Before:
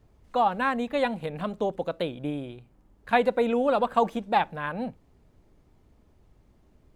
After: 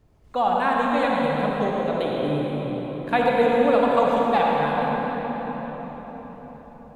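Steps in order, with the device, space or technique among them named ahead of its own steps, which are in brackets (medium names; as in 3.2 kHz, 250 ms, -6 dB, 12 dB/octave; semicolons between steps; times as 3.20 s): cathedral (reverberation RT60 5.2 s, pre-delay 48 ms, DRR -3.5 dB)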